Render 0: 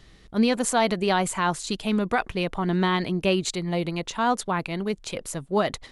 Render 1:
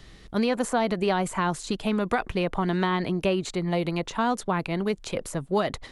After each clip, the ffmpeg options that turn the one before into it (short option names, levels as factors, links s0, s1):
-filter_complex "[0:a]acrossover=split=480|1900[s0][s1][s2];[s0]acompressor=threshold=0.0355:ratio=4[s3];[s1]acompressor=threshold=0.0355:ratio=4[s4];[s2]acompressor=threshold=0.00891:ratio=4[s5];[s3][s4][s5]amix=inputs=3:normalize=0,volume=1.5"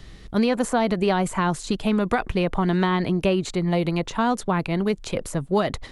-af "lowshelf=f=210:g=5,volume=1.26"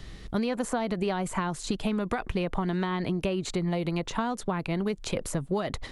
-af "acompressor=threshold=0.0562:ratio=6"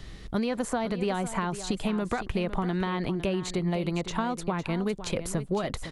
-af "aecho=1:1:507:0.237"